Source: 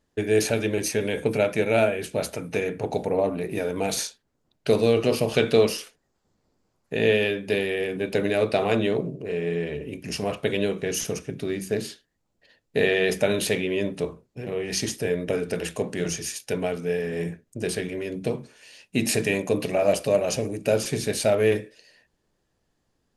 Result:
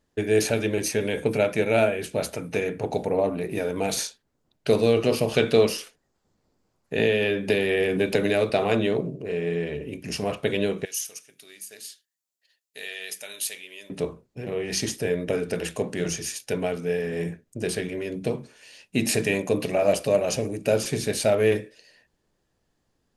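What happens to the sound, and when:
6.98–8.50 s: three bands compressed up and down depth 100%
10.85–13.90 s: differentiator

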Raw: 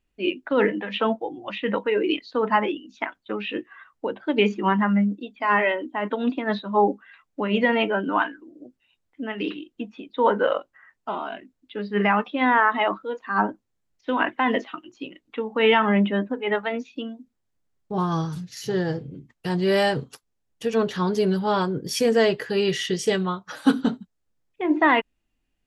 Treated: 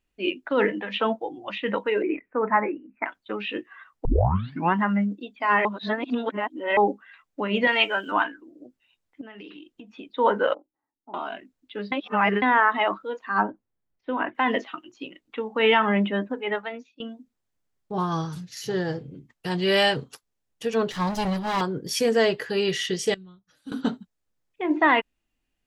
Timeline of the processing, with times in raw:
2.02–3.06 s: steep low-pass 2.4 kHz 96 dB/octave
4.05 s: tape start 0.69 s
5.65–6.77 s: reverse
7.67–8.12 s: tilt EQ +4.5 dB/octave
9.21–9.95 s: compression 8:1, threshold -37 dBFS
10.54–11.14 s: cascade formant filter u
11.92–12.42 s: reverse
13.43–14.35 s: tape spacing loss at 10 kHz 33 dB
16.37–17.00 s: fade out linear, to -21 dB
19.51–19.96 s: peaking EQ 2.9 kHz +7.5 dB 1 oct
20.92–21.61 s: comb filter that takes the minimum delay 1 ms
23.14–23.72 s: amplifier tone stack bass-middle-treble 10-0-1
whole clip: bass shelf 400 Hz -4 dB

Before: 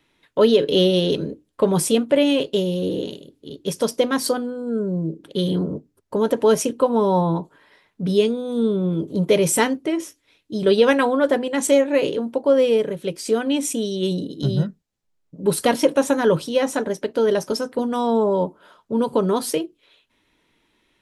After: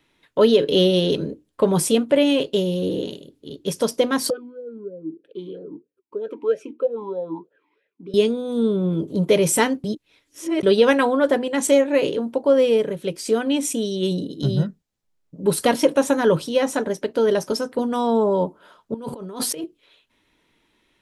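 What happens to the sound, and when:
4.30–8.14 s: talking filter e-u 3.1 Hz
9.84–10.63 s: reverse
18.94–19.64 s: compressor with a negative ratio -31 dBFS

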